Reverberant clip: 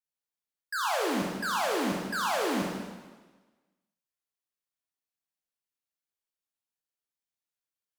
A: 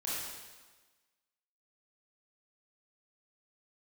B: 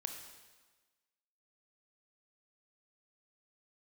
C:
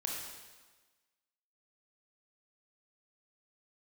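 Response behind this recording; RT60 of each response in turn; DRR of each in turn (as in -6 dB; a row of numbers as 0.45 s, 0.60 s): C; 1.3 s, 1.3 s, 1.3 s; -8.5 dB, 4.5 dB, -2.0 dB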